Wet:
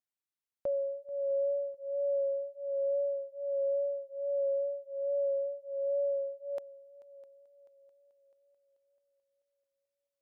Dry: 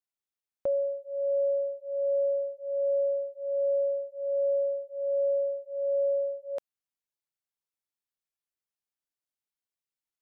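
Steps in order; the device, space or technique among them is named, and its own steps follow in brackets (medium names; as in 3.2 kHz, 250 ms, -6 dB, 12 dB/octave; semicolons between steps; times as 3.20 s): multi-head tape echo (multi-head delay 218 ms, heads second and third, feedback 48%, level -21 dB; wow and flutter 20 cents); trim -4.5 dB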